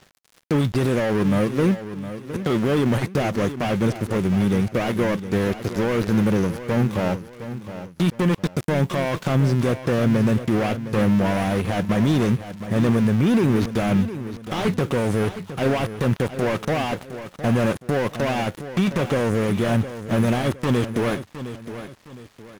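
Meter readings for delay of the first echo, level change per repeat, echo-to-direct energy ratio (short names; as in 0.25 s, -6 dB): 0.712 s, -9.0 dB, -11.5 dB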